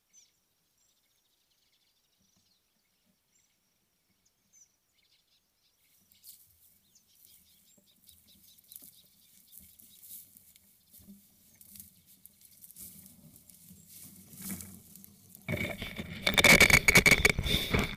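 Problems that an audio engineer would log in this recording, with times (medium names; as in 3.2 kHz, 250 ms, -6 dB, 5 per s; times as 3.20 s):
16.34 s: pop -15 dBFS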